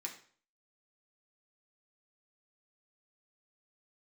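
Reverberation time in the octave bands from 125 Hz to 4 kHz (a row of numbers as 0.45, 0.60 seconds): 0.50, 0.45, 0.50, 0.45, 0.45, 0.45 seconds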